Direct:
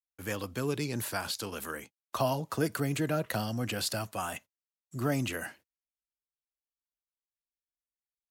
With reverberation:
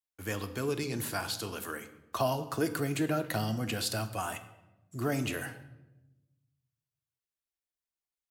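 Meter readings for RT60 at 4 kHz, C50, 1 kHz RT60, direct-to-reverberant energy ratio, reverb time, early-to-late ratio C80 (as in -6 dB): 0.70 s, 13.0 dB, 0.85 s, 8.0 dB, 1.0 s, 15.0 dB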